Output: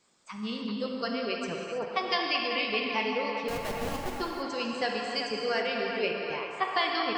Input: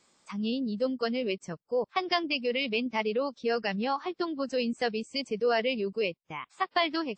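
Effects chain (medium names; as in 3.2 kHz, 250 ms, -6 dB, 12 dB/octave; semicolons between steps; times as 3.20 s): harmonic-percussive split harmonic -7 dB; 3.48–4.13 s: Schmitt trigger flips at -31.5 dBFS; on a send: band-passed feedback delay 386 ms, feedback 67%, band-pass 1.1 kHz, level -5 dB; on the sum: gated-style reverb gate 350 ms flat, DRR 0.5 dB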